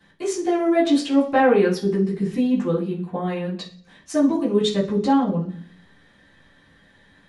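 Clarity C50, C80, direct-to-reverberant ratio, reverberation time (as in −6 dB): 9.5 dB, 14.5 dB, −11.0 dB, 0.45 s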